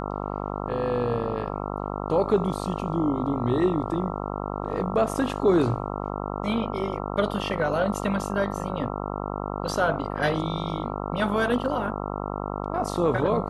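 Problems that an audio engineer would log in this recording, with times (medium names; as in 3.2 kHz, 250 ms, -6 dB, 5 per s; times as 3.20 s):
buzz 50 Hz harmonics 27 -31 dBFS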